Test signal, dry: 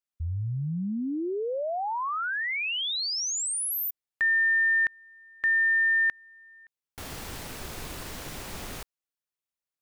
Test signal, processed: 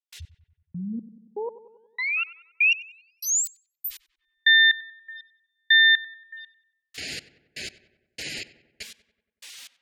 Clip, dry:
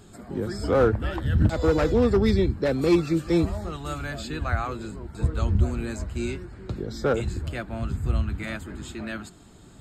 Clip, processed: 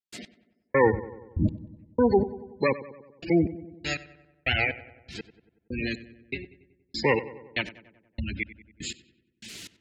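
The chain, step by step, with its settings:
lower of the sound and its delayed copy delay 0.42 ms
in parallel at −12 dB: bit-depth reduction 6 bits, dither triangular
on the sum: meter weighting curve D
four-comb reverb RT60 1.9 s, combs from 28 ms, DRR 17.5 dB
gate on every frequency bin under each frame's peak −15 dB strong
gate pattern ".x....xx.." 121 BPM −60 dB
dynamic equaliser 810 Hz, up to +5 dB, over −49 dBFS, Q 4.1
on a send: feedback echo with a low-pass in the loop 94 ms, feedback 60%, low-pass 2,300 Hz, level −15.5 dB

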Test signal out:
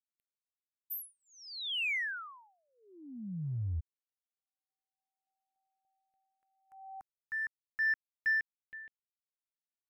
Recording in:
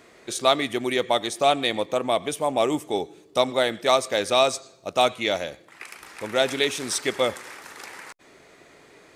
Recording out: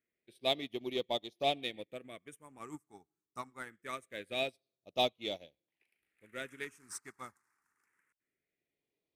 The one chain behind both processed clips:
all-pass phaser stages 4, 0.24 Hz, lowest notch 530–1,500 Hz
in parallel at −7.5 dB: hard clipping −23.5 dBFS
on the sum: expander for the loud parts 2.5 to 1, over −39 dBFS
level −8 dB

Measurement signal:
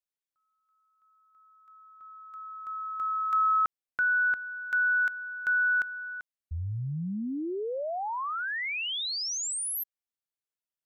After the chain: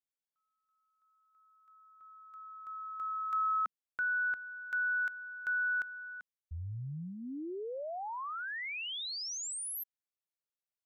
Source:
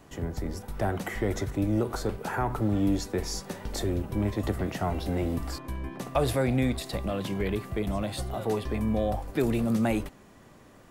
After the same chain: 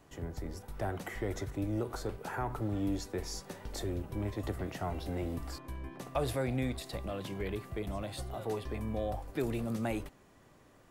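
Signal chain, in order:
parametric band 210 Hz −5 dB 0.36 octaves
level −7 dB

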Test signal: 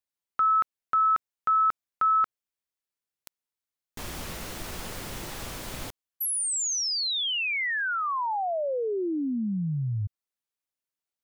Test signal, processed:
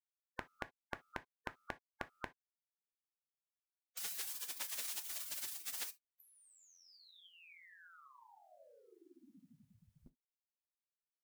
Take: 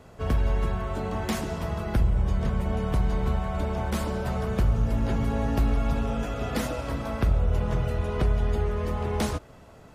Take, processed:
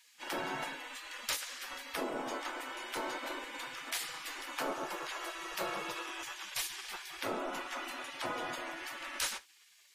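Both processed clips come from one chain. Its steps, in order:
dynamic equaliser 200 Hz, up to +3 dB, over −41 dBFS, Q 2.1
gate on every frequency bin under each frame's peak −25 dB weak
reverb whose tail is shaped and stops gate 90 ms falling, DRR 11 dB
level +3 dB

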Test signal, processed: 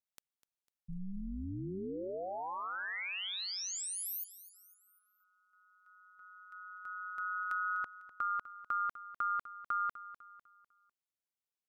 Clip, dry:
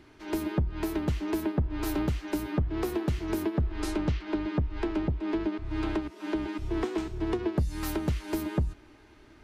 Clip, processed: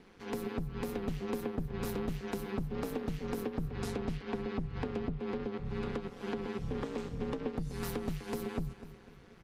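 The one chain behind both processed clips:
downward compressor, threshold −30 dBFS
ring modulation 94 Hz
repeating echo 250 ms, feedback 44%, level −15.5 dB

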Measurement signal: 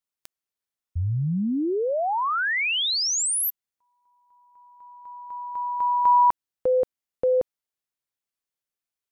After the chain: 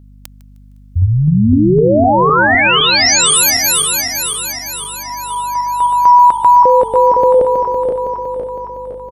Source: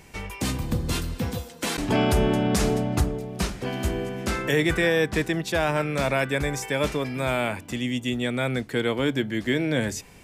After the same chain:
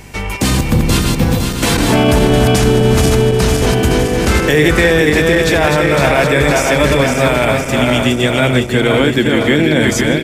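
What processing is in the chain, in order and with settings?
feedback delay that plays each chunk backwards 255 ms, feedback 73%, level −4 dB
on a send: echo with shifted repeats 154 ms, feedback 36%, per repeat −62 Hz, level −20 dB
on the sum: mains hum 50 Hz, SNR 29 dB
boost into a limiter +13.5 dB
level −1 dB

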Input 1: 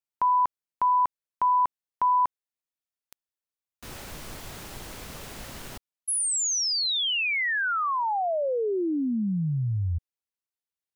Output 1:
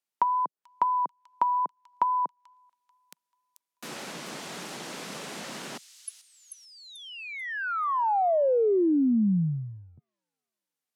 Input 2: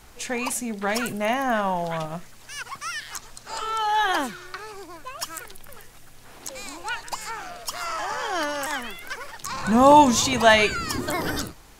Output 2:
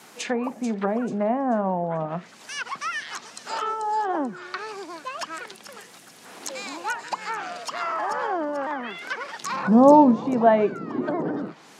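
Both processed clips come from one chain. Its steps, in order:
tape wow and flutter 15 cents
treble cut that deepens with the level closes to 640 Hz, closed at −23 dBFS
Butterworth high-pass 160 Hz 36 dB per octave
on a send: delay with a high-pass on its return 438 ms, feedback 35%, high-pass 5,000 Hz, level −6.5 dB
on the sum: level +4 dB

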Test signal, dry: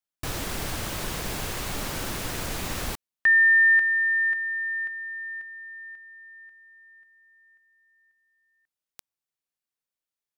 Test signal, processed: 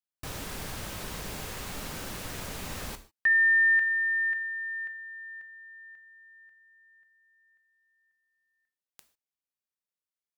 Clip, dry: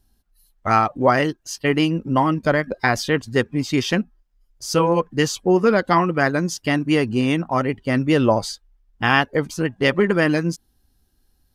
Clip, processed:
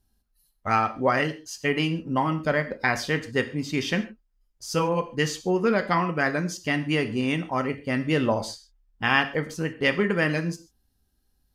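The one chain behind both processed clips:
dynamic equaliser 2,300 Hz, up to +5 dB, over −32 dBFS, Q 1.4
reverb whose tail is shaped and stops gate 170 ms falling, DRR 8 dB
level −7 dB

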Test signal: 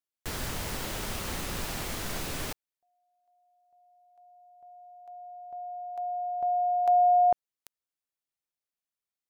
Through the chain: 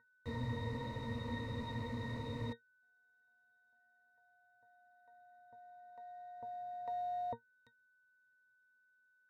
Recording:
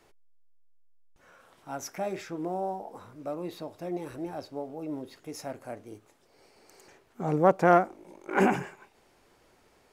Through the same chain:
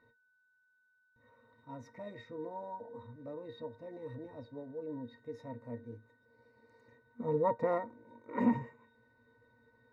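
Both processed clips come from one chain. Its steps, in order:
steady tone 1,500 Hz −47 dBFS
floating-point word with a short mantissa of 4 bits
resonances in every octave A#, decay 0.11 s
level +5.5 dB

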